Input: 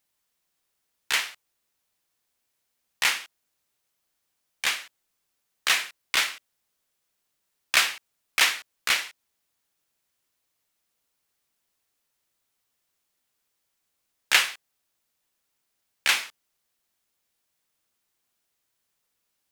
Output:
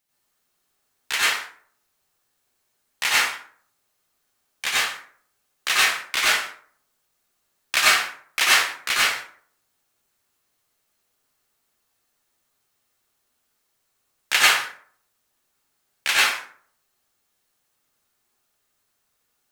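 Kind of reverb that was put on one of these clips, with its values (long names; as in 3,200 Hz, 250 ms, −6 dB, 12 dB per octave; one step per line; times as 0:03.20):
dense smooth reverb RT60 0.54 s, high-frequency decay 0.55×, pre-delay 80 ms, DRR −7.5 dB
level −1.5 dB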